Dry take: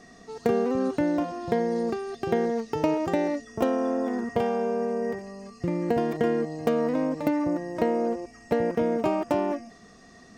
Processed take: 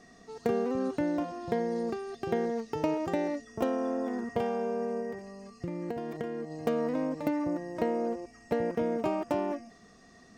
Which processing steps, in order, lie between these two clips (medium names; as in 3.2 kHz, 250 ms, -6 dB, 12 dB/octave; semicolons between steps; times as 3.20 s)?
5.00–6.51 s: compression 6:1, threshold -27 dBFS, peak gain reduction 8 dB; trim -5 dB